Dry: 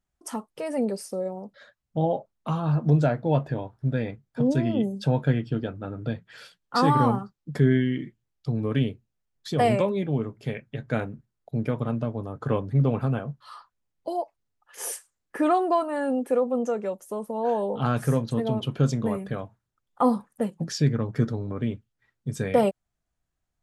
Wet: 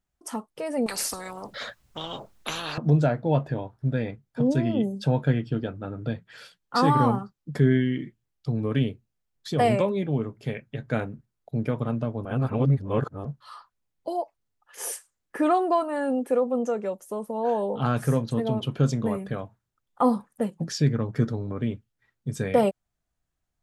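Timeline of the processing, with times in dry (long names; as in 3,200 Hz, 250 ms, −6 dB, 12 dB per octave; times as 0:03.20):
0:00.86–0:02.78: every bin compressed towards the loudest bin 10 to 1
0:12.25–0:13.25: reverse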